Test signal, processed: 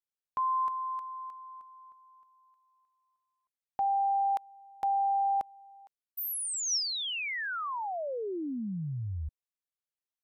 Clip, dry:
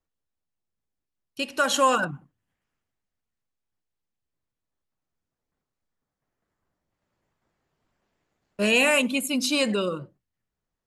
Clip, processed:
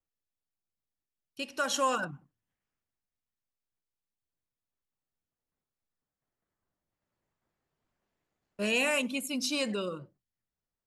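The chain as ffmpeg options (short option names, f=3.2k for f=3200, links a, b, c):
-af "adynamicequalizer=threshold=0.00355:dfrequency=5600:dqfactor=4.6:tfrequency=5600:tqfactor=4.6:attack=5:release=100:ratio=0.375:range=3.5:mode=boostabove:tftype=bell,volume=-8dB"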